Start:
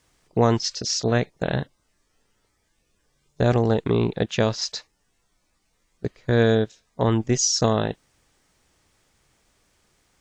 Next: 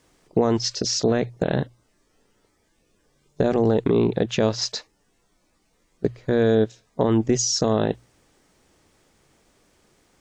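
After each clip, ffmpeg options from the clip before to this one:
ffmpeg -i in.wav -af "alimiter=limit=-15.5dB:level=0:latency=1:release=95,equalizer=frequency=340:width_type=o:width=2.4:gain=7,bandreject=frequency=60:width_type=h:width=6,bandreject=frequency=120:width_type=h:width=6,volume=1.5dB" out.wav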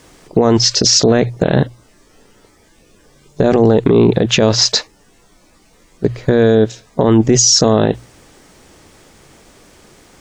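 ffmpeg -i in.wav -af "alimiter=level_in=17dB:limit=-1dB:release=50:level=0:latency=1,volume=-1dB" out.wav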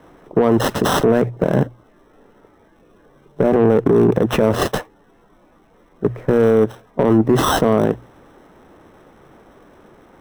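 ffmpeg -i in.wav -filter_complex "[0:a]acrossover=split=170|1900[link_01][link_02][link_03];[link_02]acontrast=73[link_04];[link_03]acrusher=samples=19:mix=1:aa=0.000001[link_05];[link_01][link_04][link_05]amix=inputs=3:normalize=0,volume=-6dB" out.wav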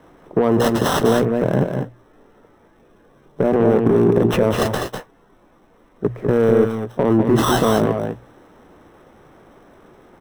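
ffmpeg -i in.wav -af "aecho=1:1:192|200|217:0.112|0.501|0.237,volume=-2dB" out.wav

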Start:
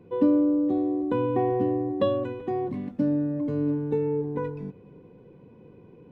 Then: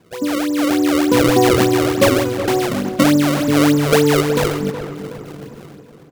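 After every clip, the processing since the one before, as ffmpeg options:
ffmpeg -i in.wav -filter_complex "[0:a]dynaudnorm=framelen=110:gausssize=11:maxgain=16dB,acrusher=samples=30:mix=1:aa=0.000001:lfo=1:lforange=48:lforate=3.4,asplit=2[link_01][link_02];[link_02]adelay=370,lowpass=frequency=2100:poles=1,volume=-10dB,asplit=2[link_03][link_04];[link_04]adelay=370,lowpass=frequency=2100:poles=1,volume=0.45,asplit=2[link_05][link_06];[link_06]adelay=370,lowpass=frequency=2100:poles=1,volume=0.45,asplit=2[link_07][link_08];[link_08]adelay=370,lowpass=frequency=2100:poles=1,volume=0.45,asplit=2[link_09][link_10];[link_10]adelay=370,lowpass=frequency=2100:poles=1,volume=0.45[link_11];[link_01][link_03][link_05][link_07][link_09][link_11]amix=inputs=6:normalize=0,volume=-1dB" out.wav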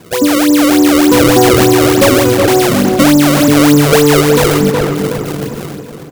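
ffmpeg -i in.wav -af "highshelf=frequency=6000:gain=7.5,asoftclip=type=tanh:threshold=-9.5dB,alimiter=level_in=15dB:limit=-1dB:release=50:level=0:latency=1,volume=-1dB" out.wav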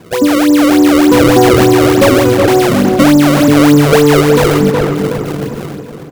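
ffmpeg -i in.wav -af "highshelf=frequency=3800:gain=-7,volume=1dB" out.wav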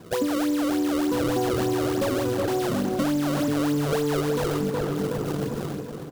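ffmpeg -i in.wav -af "equalizer=frequency=2200:width=2.8:gain=-6,acrusher=bits=5:mode=log:mix=0:aa=0.000001,acompressor=threshold=-15dB:ratio=6,volume=-7.5dB" out.wav

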